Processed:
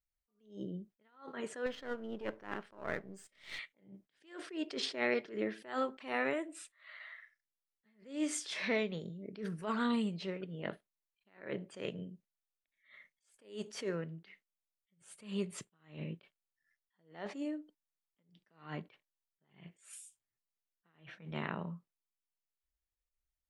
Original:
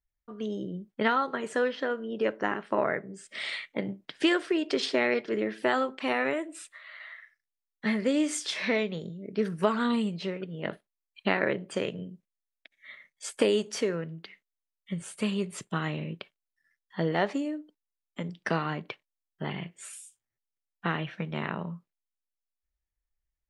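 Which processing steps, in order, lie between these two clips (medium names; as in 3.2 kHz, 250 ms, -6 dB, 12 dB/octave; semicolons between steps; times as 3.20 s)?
1.66–3.59 s: partial rectifier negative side -7 dB; attacks held to a fixed rise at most 150 dB/s; trim -5.5 dB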